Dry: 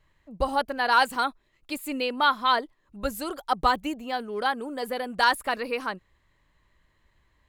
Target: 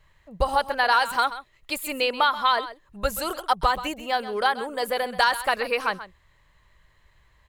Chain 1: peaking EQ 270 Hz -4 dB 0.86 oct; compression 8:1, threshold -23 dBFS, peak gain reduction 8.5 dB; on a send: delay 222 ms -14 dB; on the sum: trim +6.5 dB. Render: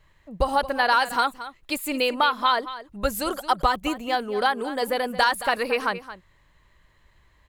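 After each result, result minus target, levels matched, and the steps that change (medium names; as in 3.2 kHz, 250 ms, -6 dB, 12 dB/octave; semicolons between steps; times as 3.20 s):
echo 91 ms late; 250 Hz band +5.5 dB
change: delay 131 ms -14 dB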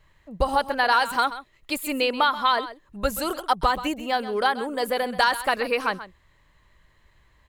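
250 Hz band +5.5 dB
change: peaking EQ 270 Hz -11 dB 0.86 oct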